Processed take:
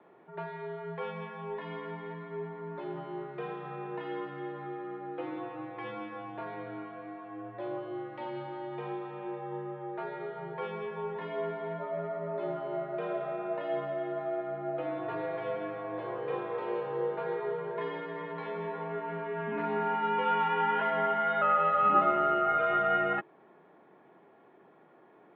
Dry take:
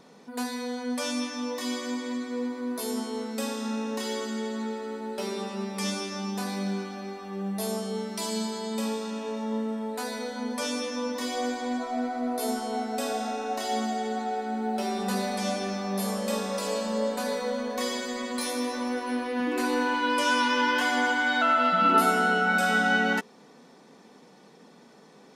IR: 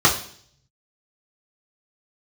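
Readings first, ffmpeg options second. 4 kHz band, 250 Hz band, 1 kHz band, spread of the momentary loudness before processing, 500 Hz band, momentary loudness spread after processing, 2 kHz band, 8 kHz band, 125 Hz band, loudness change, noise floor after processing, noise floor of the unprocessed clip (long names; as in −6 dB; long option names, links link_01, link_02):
−16.5 dB, −11.0 dB, −3.0 dB, 10 LU, −2.0 dB, 14 LU, −10.0 dB, below −40 dB, can't be measured, −5.0 dB, −59 dBFS, −53 dBFS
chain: -filter_complex "[0:a]acrossover=split=310 2300:gain=0.0891 1 0.0708[link_01][link_02][link_03];[link_01][link_02][link_03]amix=inputs=3:normalize=0,highpass=frequency=240:width_type=q:width=0.5412,highpass=frequency=240:width_type=q:width=1.307,lowpass=frequency=3500:width_type=q:width=0.5176,lowpass=frequency=3500:width_type=q:width=0.7071,lowpass=frequency=3500:width_type=q:width=1.932,afreqshift=-80,volume=-2dB"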